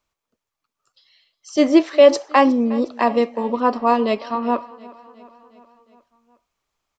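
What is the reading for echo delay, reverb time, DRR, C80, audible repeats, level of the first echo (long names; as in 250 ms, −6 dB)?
361 ms, no reverb audible, no reverb audible, no reverb audible, 4, −21.0 dB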